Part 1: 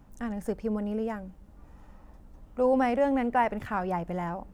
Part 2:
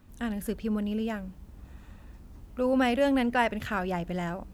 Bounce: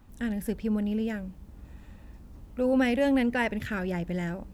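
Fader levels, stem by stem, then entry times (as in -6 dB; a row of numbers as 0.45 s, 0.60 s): -5.5 dB, -1.5 dB; 0.00 s, 0.00 s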